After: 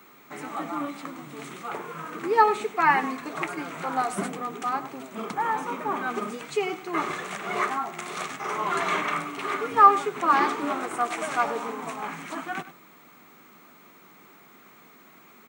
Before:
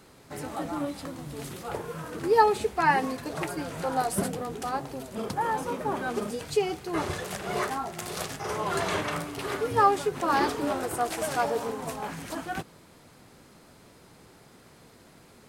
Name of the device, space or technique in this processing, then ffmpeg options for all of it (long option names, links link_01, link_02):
old television with a line whistle: -filter_complex "[0:a]highpass=frequency=180:width=0.5412,highpass=frequency=180:width=1.3066,equalizer=frequency=520:width_type=q:width=4:gain=-7,equalizer=frequency=1200:width_type=q:width=4:gain=9,equalizer=frequency=2200:width_type=q:width=4:gain=8,equalizer=frequency=4900:width_type=q:width=4:gain=-9,lowpass=frequency=8400:width=0.5412,lowpass=frequency=8400:width=1.3066,aeval=exprs='val(0)+0.00178*sin(2*PI*15625*n/s)':channel_layout=same,asplit=2[link_01][link_02];[link_02]adelay=99.13,volume=-14dB,highshelf=frequency=4000:gain=-2.23[link_03];[link_01][link_03]amix=inputs=2:normalize=0"